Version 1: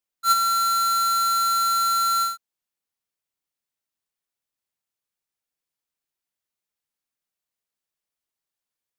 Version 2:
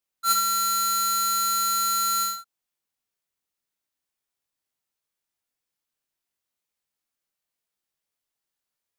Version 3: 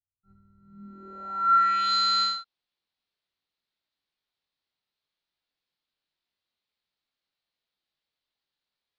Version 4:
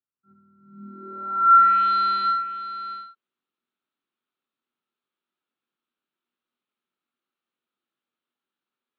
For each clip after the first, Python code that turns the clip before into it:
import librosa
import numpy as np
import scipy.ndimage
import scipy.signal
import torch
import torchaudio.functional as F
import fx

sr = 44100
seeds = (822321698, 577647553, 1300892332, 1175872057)

y1 = fx.room_early_taps(x, sr, ms=(21, 70), db=(-4.0, -7.5))
y2 = fx.filter_sweep_lowpass(y1, sr, from_hz=100.0, to_hz=4100.0, start_s=0.57, end_s=1.94, q=3.3)
y2 = fx.air_absorb(y2, sr, metres=120.0)
y3 = fx.cabinet(y2, sr, low_hz=140.0, low_slope=24, high_hz=3100.0, hz=(240.0, 360.0, 680.0, 1300.0, 2000.0), db=(10, 8, -3, 8, -5))
y3 = y3 + 10.0 ** (-12.5 / 20.0) * np.pad(y3, (int(706 * sr / 1000.0), 0))[:len(y3)]